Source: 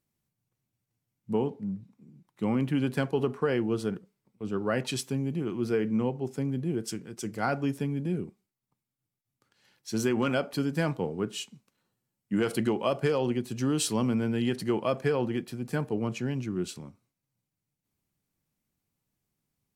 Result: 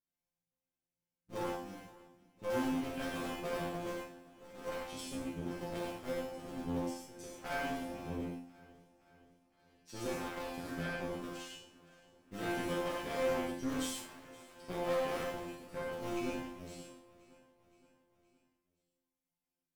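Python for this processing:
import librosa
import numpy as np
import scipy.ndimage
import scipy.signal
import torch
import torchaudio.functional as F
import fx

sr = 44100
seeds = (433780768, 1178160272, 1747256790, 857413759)

p1 = fx.cycle_switch(x, sr, every=2, mode='muted')
p2 = fx.resonator_bank(p1, sr, root=53, chord='fifth', decay_s=0.54)
p3 = fx.cheby_harmonics(p2, sr, harmonics=(4, 5, 7, 8), levels_db=(-15, -12, -21, -16), full_scale_db=-31.0)
p4 = p3 + fx.echo_feedback(p3, sr, ms=519, feedback_pct=57, wet_db=-21.0, dry=0)
p5 = fx.rev_gated(p4, sr, seeds[0], gate_ms=160, shape='flat', drr_db=-3.5)
y = F.gain(torch.from_numpy(p5), 1.0).numpy()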